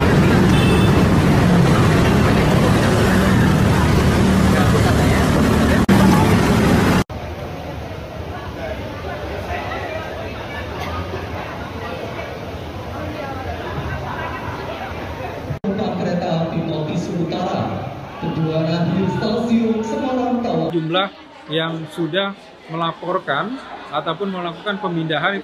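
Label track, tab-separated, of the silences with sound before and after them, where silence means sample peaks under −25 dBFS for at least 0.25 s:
21.080000	21.490000	silence
22.320000	22.710000	silence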